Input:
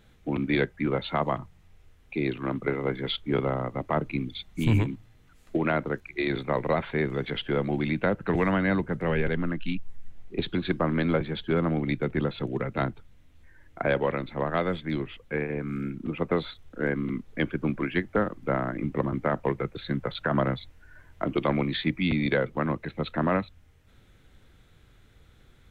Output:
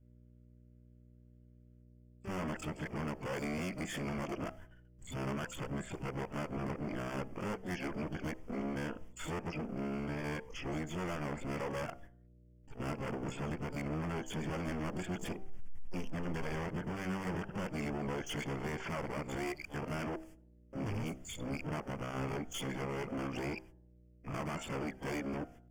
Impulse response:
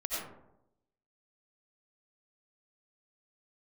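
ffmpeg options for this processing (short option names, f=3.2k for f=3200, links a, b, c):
-filter_complex "[0:a]areverse,agate=range=-31dB:threshold=-45dB:ratio=16:detection=peak,aeval=exprs='val(0)+0.001*(sin(2*PI*60*n/s)+sin(2*PI*2*60*n/s)/2+sin(2*PI*3*60*n/s)/3+sin(2*PI*4*60*n/s)/4+sin(2*PI*5*60*n/s)/5)':c=same,adynamicequalizer=threshold=0.01:dfrequency=200:dqfactor=2.2:tfrequency=200:tqfactor=2.2:attack=5:release=100:ratio=0.375:range=2:mode=boostabove:tftype=bell,acompressor=threshold=-30dB:ratio=3,asoftclip=type=hard:threshold=-36dB,bandreject=f=64.06:t=h:w=4,bandreject=f=128.12:t=h:w=4,bandreject=f=192.18:t=h:w=4,bandreject=f=256.24:t=h:w=4,bandreject=f=320.3:t=h:w=4,bandreject=f=384.36:t=h:w=4,bandreject=f=448.42:t=h:w=4,bandreject=f=512.48:t=h:w=4,bandreject=f=576.54:t=h:w=4,bandreject=f=640.6:t=h:w=4,bandreject=f=704.66:t=h:w=4,bandreject=f=768.72:t=h:w=4,bandreject=f=832.78:t=h:w=4,bandreject=f=896.84:t=h:w=4,asplit=2[a][b];[b]asetrate=88200,aresample=44100,atempo=0.5,volume=-8dB[c];[a][c]amix=inputs=2:normalize=0,asuperstop=centerf=3900:order=4:qfactor=2.6,asplit=2[d][e];[1:a]atrim=start_sample=2205,afade=t=out:st=0.15:d=0.01,atrim=end_sample=7056[f];[e][f]afir=irnorm=-1:irlink=0,volume=-26.5dB[g];[d][g]amix=inputs=2:normalize=0"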